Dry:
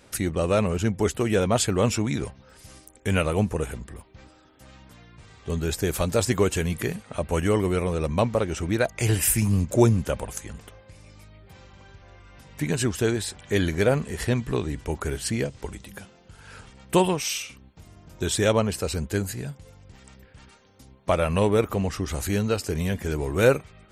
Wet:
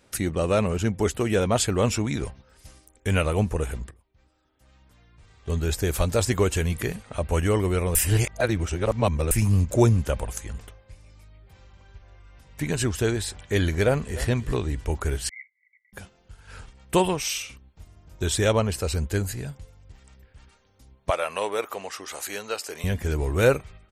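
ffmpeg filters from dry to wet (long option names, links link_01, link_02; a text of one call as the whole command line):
ffmpeg -i in.wav -filter_complex "[0:a]asplit=2[link_01][link_02];[link_02]afade=type=in:start_time=13.85:duration=0.01,afade=type=out:start_time=14.27:duration=0.01,aecho=0:1:300|600:0.149624|0.0149624[link_03];[link_01][link_03]amix=inputs=2:normalize=0,asettb=1/sr,asplit=3[link_04][link_05][link_06];[link_04]atrim=end=15.294[link_07];[link_05]atrim=start=15.29:end=15.93,asetpts=PTS-STARTPTS,afade=type=in:duration=0.004:curve=qsin,afade=type=out:start_time=0.636:duration=0.004:curve=qsin,asuperpass=centerf=2100:order=12:qfactor=7.3[link_08];[link_06]atrim=start=15.926[link_09];[link_07][link_08]acrossfade=duration=0.004:curve1=hsin:curve2=qsin[link_10];[link_10][link_09]acrossfade=duration=0.004:curve1=qsin:curve2=hsin,asettb=1/sr,asplit=3[link_11][link_12][link_13];[link_11]atrim=end=21.104[link_14];[link_12]atrim=start=21.1:end=22.84,asetpts=PTS-STARTPTS,afade=type=in:duration=0.004:curve=qsin,afade=type=out:start_time=1.736:duration=0.004:curve=qsin,highpass=580[link_15];[link_13]atrim=start=22.836[link_16];[link_14][link_15]acrossfade=duration=0.004:curve1=hsin:curve2=qsin[link_17];[link_17][link_16]acrossfade=duration=0.004:curve1=qsin:curve2=hsin,asplit=4[link_18][link_19][link_20][link_21];[link_18]atrim=end=3.91,asetpts=PTS-STARTPTS,afade=type=out:start_time=3.906:duration=0.004:curve=hsin:silence=0.141254[link_22];[link_19]atrim=start=3.91:end=7.952,asetpts=PTS-STARTPTS,afade=type=in:duration=1.64:silence=0.141254[link_23];[link_20]atrim=start=7.948:end=9.312,asetpts=PTS-STARTPTS,areverse[link_24];[link_21]atrim=start=9.308[link_25];[link_22][link_23]concat=n=2:v=0:a=1[link_26];[link_26][link_24]acrossfade=duration=0.004:curve1=hsin:curve2=hsin[link_27];[link_27][link_25]acrossfade=duration=0.004:curve1=hsin:curve2=hsin,agate=range=-6dB:threshold=-45dB:ratio=16:detection=peak,asubboost=boost=3:cutoff=85" out.wav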